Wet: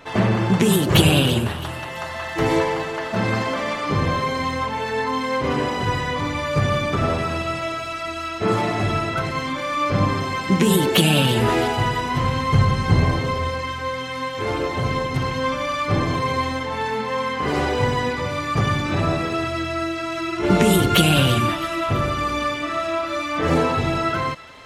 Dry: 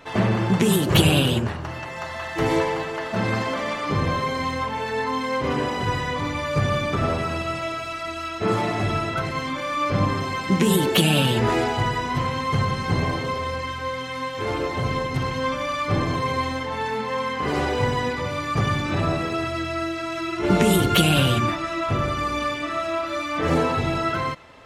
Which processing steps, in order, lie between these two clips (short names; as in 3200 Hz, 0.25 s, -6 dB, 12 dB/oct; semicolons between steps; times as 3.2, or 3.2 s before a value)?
12.22–13.49 low shelf 100 Hz +11.5 dB; thin delay 0.332 s, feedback 47%, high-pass 2300 Hz, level -14 dB; gain +2 dB